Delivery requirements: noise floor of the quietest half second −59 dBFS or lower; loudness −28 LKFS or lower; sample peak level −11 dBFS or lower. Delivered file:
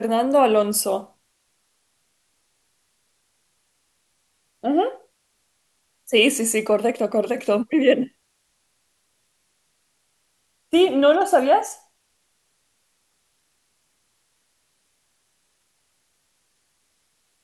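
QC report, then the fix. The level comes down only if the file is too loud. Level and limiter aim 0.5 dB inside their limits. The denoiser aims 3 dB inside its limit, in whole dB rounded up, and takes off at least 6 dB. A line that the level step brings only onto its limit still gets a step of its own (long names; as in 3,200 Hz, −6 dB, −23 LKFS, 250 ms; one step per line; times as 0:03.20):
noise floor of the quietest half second −69 dBFS: in spec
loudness −20.0 LKFS: out of spec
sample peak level −5.5 dBFS: out of spec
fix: level −8.5 dB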